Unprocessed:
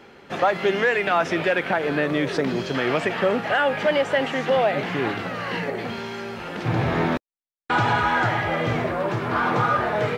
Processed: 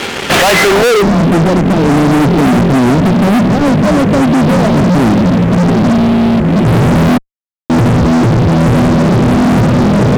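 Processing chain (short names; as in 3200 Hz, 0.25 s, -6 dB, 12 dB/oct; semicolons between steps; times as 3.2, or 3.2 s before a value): CVSD 32 kbps; low-pass sweep 3200 Hz -> 220 Hz, 0.5–1.1; fuzz box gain 40 dB, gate -48 dBFS; gain +6 dB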